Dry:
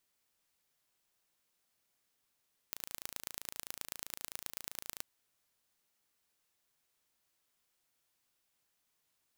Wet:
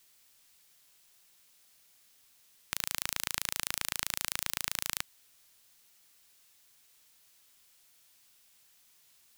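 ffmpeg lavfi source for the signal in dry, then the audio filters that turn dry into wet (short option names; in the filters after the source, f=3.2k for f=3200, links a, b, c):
-f lavfi -i "aevalsrc='0.282*eq(mod(n,1592),0)*(0.5+0.5*eq(mod(n,4776),0))':d=2.29:s=44100"
-filter_complex "[0:a]equalizer=f=390:w=0.51:g=-3,acrossover=split=610|2200[a][b][c];[c]acontrast=34[d];[a][b][d]amix=inputs=3:normalize=0,aeval=exprs='0.335*sin(PI/2*2.24*val(0)/0.335)':c=same"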